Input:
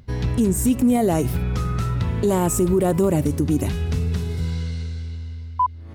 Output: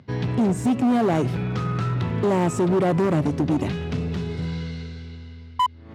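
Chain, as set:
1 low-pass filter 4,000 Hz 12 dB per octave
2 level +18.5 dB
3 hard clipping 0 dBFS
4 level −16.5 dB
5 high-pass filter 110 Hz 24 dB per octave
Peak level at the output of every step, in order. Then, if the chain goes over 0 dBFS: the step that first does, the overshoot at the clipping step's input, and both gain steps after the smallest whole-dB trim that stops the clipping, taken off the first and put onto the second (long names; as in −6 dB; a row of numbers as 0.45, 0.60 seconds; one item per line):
−10.5, +8.0, 0.0, −16.5, −9.0 dBFS
step 2, 8.0 dB
step 2 +10.5 dB, step 4 −8.5 dB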